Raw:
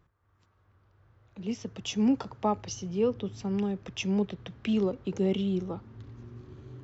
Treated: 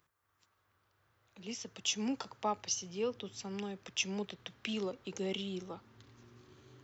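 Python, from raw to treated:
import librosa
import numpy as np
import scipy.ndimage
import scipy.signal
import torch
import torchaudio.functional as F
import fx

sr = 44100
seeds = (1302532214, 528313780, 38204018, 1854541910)

y = fx.tilt_eq(x, sr, slope=3.5)
y = y * librosa.db_to_amplitude(-4.5)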